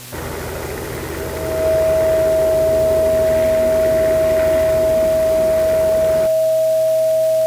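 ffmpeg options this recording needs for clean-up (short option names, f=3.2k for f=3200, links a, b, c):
-af "adeclick=t=4,bandreject=f=123.6:t=h:w=4,bandreject=f=247.2:t=h:w=4,bandreject=f=370.8:t=h:w=4,bandreject=f=494.4:t=h:w=4,bandreject=f=640:w=30,afwtdn=0.018"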